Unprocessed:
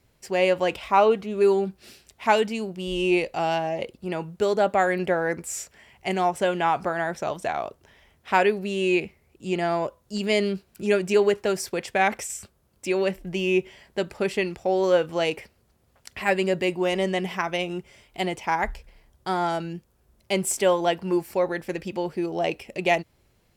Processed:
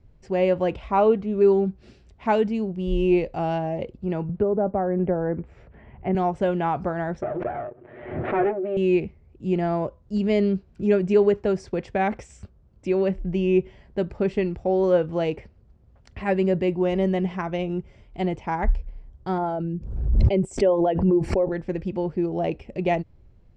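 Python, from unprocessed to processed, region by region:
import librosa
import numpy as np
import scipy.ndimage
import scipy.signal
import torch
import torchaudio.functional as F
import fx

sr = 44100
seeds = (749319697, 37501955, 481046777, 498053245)

y = fx.chain(x, sr, fx.env_lowpass_down(base_hz=1100.0, full_db=-19.5),
    fx.air_absorb(metres=460.0),
    fx.band_squash(depth_pct=40), at=(4.29, 6.15))
y = fx.chain(y, sr, fx.lower_of_two(delay_ms=8.3),
    fx.cabinet(low_hz=200.0, low_slope=12, high_hz=2100.0, hz=(210.0, 360.0, 620.0, 1000.0), db=(-9, 7, 6, -8)),
    fx.pre_swell(db_per_s=53.0), at=(7.22, 8.77))
y = fx.chain(y, sr, fx.envelope_sharpen(power=1.5),
    fx.pre_swell(db_per_s=51.0), at=(19.38, 21.52))
y = scipy.signal.sosfilt(scipy.signal.butter(4, 7400.0, 'lowpass', fs=sr, output='sos'), y)
y = fx.tilt_eq(y, sr, slope=-4.0)
y = y * 10.0 ** (-3.5 / 20.0)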